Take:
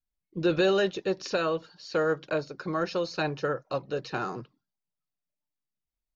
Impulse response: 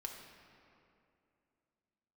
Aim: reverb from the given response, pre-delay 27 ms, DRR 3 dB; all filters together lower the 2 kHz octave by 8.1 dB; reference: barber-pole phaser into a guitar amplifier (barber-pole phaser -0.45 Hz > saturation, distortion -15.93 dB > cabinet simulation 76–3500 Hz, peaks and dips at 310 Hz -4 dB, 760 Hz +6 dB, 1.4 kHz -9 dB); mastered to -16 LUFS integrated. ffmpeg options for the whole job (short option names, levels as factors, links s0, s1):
-filter_complex "[0:a]equalizer=f=2000:t=o:g=-6,asplit=2[s0][s1];[1:a]atrim=start_sample=2205,adelay=27[s2];[s1][s2]afir=irnorm=-1:irlink=0,volume=0.891[s3];[s0][s3]amix=inputs=2:normalize=0,asplit=2[s4][s5];[s5]afreqshift=-0.45[s6];[s4][s6]amix=inputs=2:normalize=1,asoftclip=threshold=0.0794,highpass=76,equalizer=f=310:t=q:w=4:g=-4,equalizer=f=760:t=q:w=4:g=6,equalizer=f=1400:t=q:w=4:g=-9,lowpass=f=3500:w=0.5412,lowpass=f=3500:w=1.3066,volume=7.5"